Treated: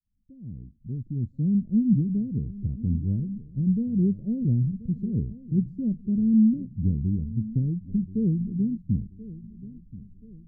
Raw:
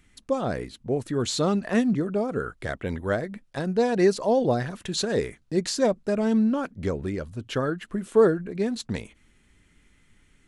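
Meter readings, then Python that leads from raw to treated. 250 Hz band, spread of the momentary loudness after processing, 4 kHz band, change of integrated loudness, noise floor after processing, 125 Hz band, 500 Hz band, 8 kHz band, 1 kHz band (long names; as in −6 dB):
+2.5 dB, 19 LU, below −40 dB, 0.0 dB, −55 dBFS, +7.0 dB, −20.0 dB, below −40 dB, below −40 dB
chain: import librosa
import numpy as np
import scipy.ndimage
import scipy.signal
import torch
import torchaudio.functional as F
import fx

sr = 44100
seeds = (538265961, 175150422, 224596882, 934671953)

y = fx.fade_in_head(x, sr, length_s=1.99)
y = scipy.signal.sosfilt(scipy.signal.cheby2(4, 70, 900.0, 'lowpass', fs=sr, output='sos'), y)
y = fx.echo_feedback(y, sr, ms=1031, feedback_pct=42, wet_db=-17.0)
y = F.gain(torch.from_numpy(y), 8.5).numpy()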